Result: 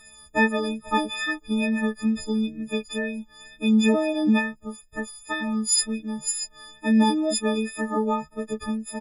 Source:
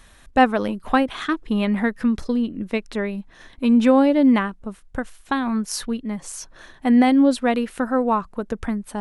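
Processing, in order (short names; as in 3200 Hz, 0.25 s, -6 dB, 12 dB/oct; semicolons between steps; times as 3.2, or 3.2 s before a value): frequency quantiser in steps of 6 st; wow and flutter 17 cents; doubler 14 ms -3 dB; gain -7.5 dB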